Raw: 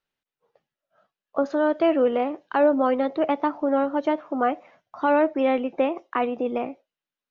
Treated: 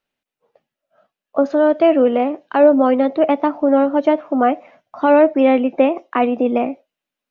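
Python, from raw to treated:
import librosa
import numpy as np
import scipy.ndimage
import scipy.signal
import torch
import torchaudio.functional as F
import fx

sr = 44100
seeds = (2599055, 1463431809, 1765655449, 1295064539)

p1 = fx.graphic_eq_15(x, sr, hz=(250, 630, 2500), db=(7, 6, 4))
p2 = fx.rider(p1, sr, range_db=10, speed_s=2.0)
p3 = p1 + (p2 * librosa.db_to_amplitude(-1.0))
y = p3 * librosa.db_to_amplitude(-3.0)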